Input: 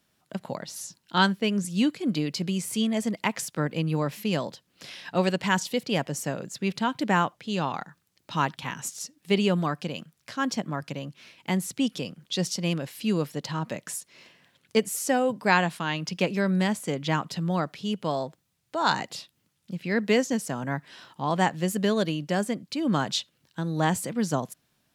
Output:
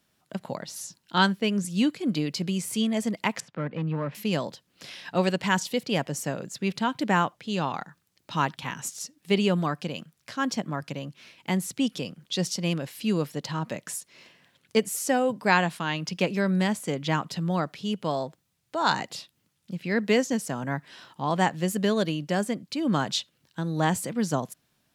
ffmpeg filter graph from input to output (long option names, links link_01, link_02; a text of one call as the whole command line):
ffmpeg -i in.wav -filter_complex "[0:a]asettb=1/sr,asplit=3[link_01][link_02][link_03];[link_01]atrim=end=3.404[link_04];[link_02]atrim=start=3.4:end=4.15,asetpts=PTS-STARTPTS,afade=type=in:duration=0.004:curve=qsin,afade=type=out:start_time=0.746:duration=0.004:curve=qsin,volume=22dB,asoftclip=hard,volume=-22dB,highpass=100,lowpass=2000,equalizer=frequency=360:width_type=o:width=0.58:gain=-4[link_05];[link_03]atrim=start=4.146[link_06];[link_04][link_05]acrossfade=duration=0.004:curve1=hsin:curve2=qsin[link_07];[link_07][link_06]acrossfade=duration=0.004:curve1=qsin:curve2=hsin" out.wav